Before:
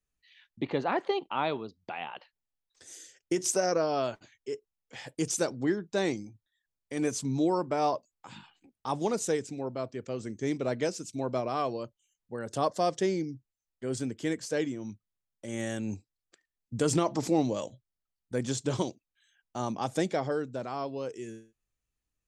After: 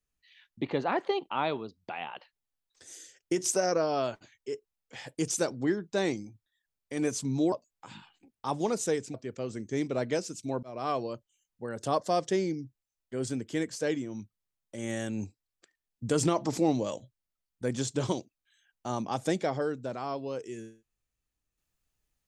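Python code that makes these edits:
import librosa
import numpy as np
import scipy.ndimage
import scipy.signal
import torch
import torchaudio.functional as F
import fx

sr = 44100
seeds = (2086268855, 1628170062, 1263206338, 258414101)

y = fx.edit(x, sr, fx.cut(start_s=7.52, length_s=0.41),
    fx.cut(start_s=9.55, length_s=0.29),
    fx.fade_in_span(start_s=11.33, length_s=0.26), tone=tone)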